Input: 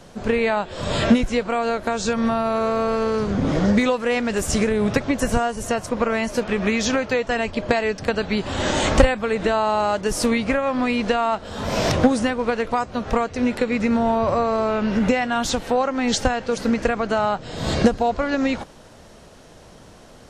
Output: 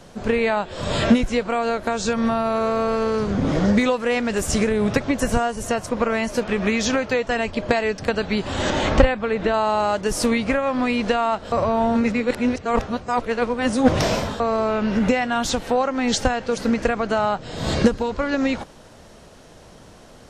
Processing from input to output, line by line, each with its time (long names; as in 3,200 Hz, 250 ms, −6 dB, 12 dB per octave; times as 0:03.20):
0:08.70–0:09.54: high-frequency loss of the air 110 metres
0:11.52–0:14.40: reverse
0:17.79–0:18.34: notch filter 700 Hz, Q 5.1